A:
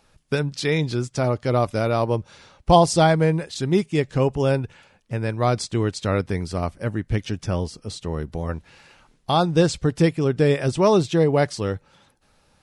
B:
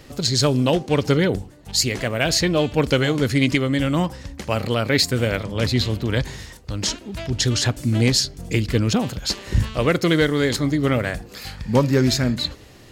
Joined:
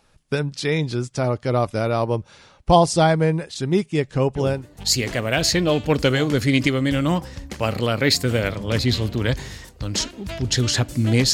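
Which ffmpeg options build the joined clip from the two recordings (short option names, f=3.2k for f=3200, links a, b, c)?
-filter_complex "[0:a]apad=whole_dur=11.33,atrim=end=11.33,atrim=end=4.69,asetpts=PTS-STARTPTS[a];[1:a]atrim=start=1.23:end=8.21,asetpts=PTS-STARTPTS[b];[a][b]acrossfade=d=0.34:c1=qsin:c2=qsin"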